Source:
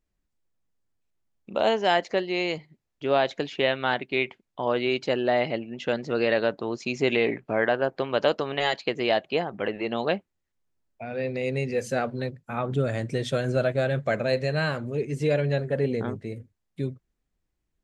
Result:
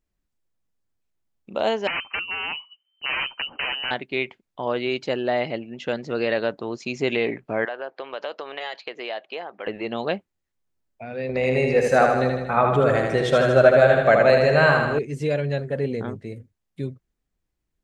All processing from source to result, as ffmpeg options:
-filter_complex "[0:a]asettb=1/sr,asplit=3[a][b][c];[a]atrim=end=1.874[d];[b]atrim=start=1.87:end=3.91,asetpts=PTS-STARTPTS,afade=t=in:d=0.004:c=qsin,afade=t=out:st=2.036:d=0.004:c=qsin,asubboost=boost=7.5:cutoff=210,aeval=exprs='(mod(8.91*val(0)+1,2)-1)/8.91':c=same,lowpass=f=2.6k:t=q:w=0.5098,lowpass=f=2.6k:t=q:w=0.6013,lowpass=f=2.6k:t=q:w=0.9,lowpass=f=2.6k:t=q:w=2.563,afreqshift=-3100[e];[c]atrim=start=3.906[f];[d][e]acrossfade=d=0.004:c1=hsin:c2=qsin[g];[g][f]acrossfade=d=0.004:c1=qsin:c2=hsin,asettb=1/sr,asplit=3[h][i][j];[h]atrim=end=7.654[k];[i]atrim=start=7.65:end=9.67,asetpts=PTS-STARTPTS,afade=t=in:d=0.004:c=qsin,afade=t=out:st=2.016:d=0.004:c=qsin,highpass=500,lowpass=4.5k,acompressor=threshold=-29dB:ratio=2.5:attack=3.2:release=140:knee=1:detection=peak[l];[j]atrim=start=9.666[m];[k][l]acrossfade=d=0.004:c1=hsin:c2=qsin[n];[n][m]acrossfade=d=0.004:c1=qsin:c2=hsin,asettb=1/sr,asplit=3[o][p][q];[o]atrim=end=11.294[r];[p]atrim=start=11.29:end=14.99,asetpts=PTS-STARTPTS,afade=t=in:d=0.004:c=qsin,afade=t=out:st=3.696:d=0.004:c=qsin,equalizer=f=960:w=0.5:g=12,aeval=exprs='val(0)+0.00447*(sin(2*PI*60*n/s)+sin(2*PI*2*60*n/s)/2+sin(2*PI*3*60*n/s)/3+sin(2*PI*4*60*n/s)/4+sin(2*PI*5*60*n/s)/5)':c=same,aecho=1:1:78|156|234|312|390|468|546|624:0.631|0.372|0.22|0.13|0.0765|0.0451|0.0266|0.0157,atrim=end_sample=163170[s];[q]atrim=start=14.986[t];[r][s]acrossfade=d=0.004:c1=hsin:c2=qsin[u];[u][t]acrossfade=d=0.004:c1=qsin:c2=hsin"

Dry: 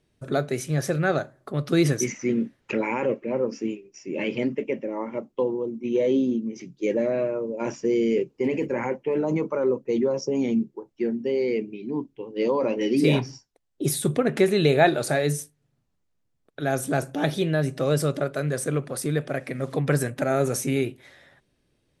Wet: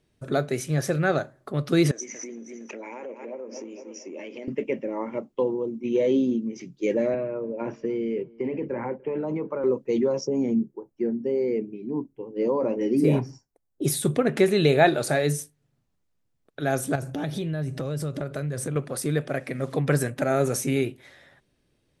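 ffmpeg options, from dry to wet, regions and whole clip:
-filter_complex "[0:a]asettb=1/sr,asplit=3[a][b][c];[a]atrim=end=1.914[d];[b]atrim=start=1.91:end=4.48,asetpts=PTS-STARTPTS,afade=t=in:d=0.004:c=qsin,afade=t=out:st=2.566:d=0.004:c=qsin,aecho=1:1:231|462|693|924:0.178|0.08|0.036|0.0162,atrim=end_sample=113337,acompressor=threshold=-33dB:ratio=16:attack=3.2:release=140:knee=1:detection=peak,highpass=f=240:w=0.5412,highpass=f=240:w=1.3066,equalizer=f=650:t=q:w=4:g=6,equalizer=f=1.4k:t=q:w=4:g=-3,equalizer=f=2.7k:t=q:w=4:g=-3,equalizer=f=4.2k:t=q:w=4:g=-5,equalizer=f=6.2k:t=q:w=4:g=7,lowpass=f=7.4k:w=0.5412,lowpass=f=7.4k:w=1.3066[e];[c]atrim=start=4.476[f];[d][e]acrossfade=d=0.004:c1=hsin:c2=qsin[g];[g][f]acrossfade=d=0.004:c1=qsin:c2=hsin,asettb=1/sr,asplit=3[h][i][j];[h]atrim=end=7.144[k];[i]atrim=start=7.14:end=9.64,asetpts=PTS-STARTPTS,afade=t=in:d=0.004:c=qsin,afade=t=out:st=2.496:d=0.004:c=qsin,lowpass=2.9k,acrossover=split=200|1600[l][m][n];[l]acompressor=threshold=-38dB:ratio=4[o];[m]acompressor=threshold=-27dB:ratio=4[p];[n]acompressor=threshold=-52dB:ratio=4[q];[o][p][q]amix=inputs=3:normalize=0,asplit=2[r][s];[s]adelay=294,lowpass=f=1.7k:p=1,volume=-23.5dB,asplit=2[t][u];[u]adelay=294,lowpass=f=1.7k:p=1,volume=0.37[v];[r][t][v]amix=inputs=3:normalize=0,atrim=end_sample=110250[w];[j]atrim=start=9.636[x];[k][w]acrossfade=d=0.004:c1=hsin:c2=qsin[y];[y][x]acrossfade=d=0.004:c1=qsin:c2=hsin,asettb=1/sr,asplit=3[z][aa][ab];[z]atrim=end=10.274[ac];[aa]atrim=start=10.27:end=13.82,asetpts=PTS-STARTPTS,afade=t=in:d=0.004:c=qsin,afade=t=out:st=3.546:d=0.004:c=qsin,equalizer=f=3.5k:w=0.68:g=-14.5,bandreject=f=3.7k:w=17[ad];[ab]atrim=start=13.816[ae];[ac][ad]acrossfade=d=0.004:c1=hsin:c2=qsin[af];[af][ae]acrossfade=d=0.004:c1=qsin:c2=hsin,asettb=1/sr,asplit=3[ag][ah][ai];[ag]atrim=end=16.954[aj];[ah]atrim=start=16.95:end=18.76,asetpts=PTS-STARTPTS,afade=t=in:d=0.004:c=qsin,afade=t=out:st=1.806:d=0.004:c=qsin,equalizer=f=87:w=0.69:g=11.5,acompressor=threshold=-26dB:ratio=6:attack=3.2:release=140:knee=1:detection=peak[ak];[ai]atrim=start=18.756[al];[aj][ak]acrossfade=d=0.004:c1=hsin:c2=qsin[am];[am][al]acrossfade=d=0.004:c1=qsin:c2=hsin"

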